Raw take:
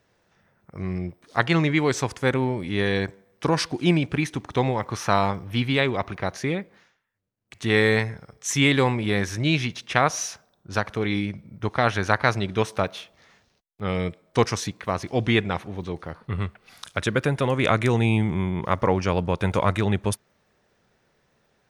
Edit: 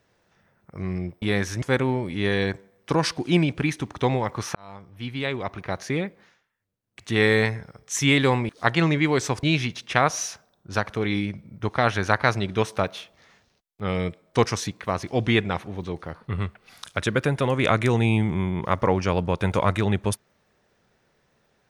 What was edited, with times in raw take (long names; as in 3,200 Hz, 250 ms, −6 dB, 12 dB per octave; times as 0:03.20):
0:01.22–0:02.16: swap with 0:09.03–0:09.43
0:05.09–0:06.51: fade in